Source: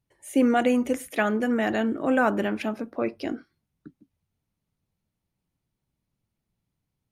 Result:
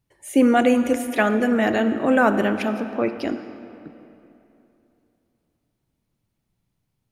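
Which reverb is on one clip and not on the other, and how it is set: digital reverb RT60 3 s, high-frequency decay 0.7×, pre-delay 15 ms, DRR 10 dB; gain +4.5 dB

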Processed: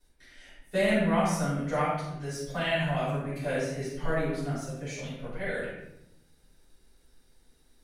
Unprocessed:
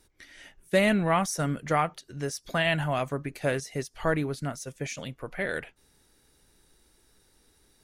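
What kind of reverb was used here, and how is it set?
shoebox room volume 260 m³, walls mixed, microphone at 6.6 m; gain -17.5 dB

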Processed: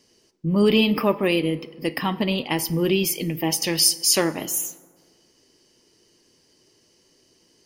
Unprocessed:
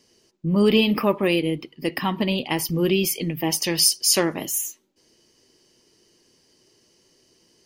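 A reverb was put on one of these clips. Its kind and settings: FDN reverb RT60 1.6 s, low-frequency decay 1.05×, high-frequency decay 0.5×, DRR 15 dB

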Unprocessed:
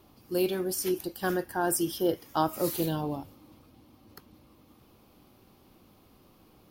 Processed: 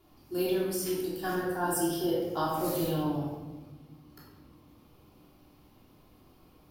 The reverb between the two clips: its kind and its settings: shoebox room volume 640 m³, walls mixed, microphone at 3.2 m; gain -8.5 dB

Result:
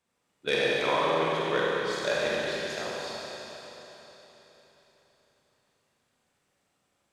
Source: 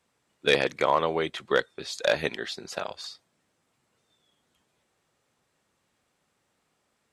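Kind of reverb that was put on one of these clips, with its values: Schroeder reverb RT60 3.9 s, combs from 31 ms, DRR -6 dB; gain -7.5 dB

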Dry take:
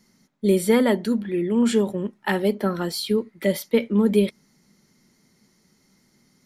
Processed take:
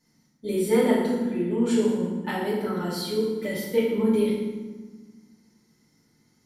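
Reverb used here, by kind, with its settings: FDN reverb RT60 1.3 s, low-frequency decay 1.6×, high-frequency decay 0.7×, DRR -8.5 dB; gain -12.5 dB

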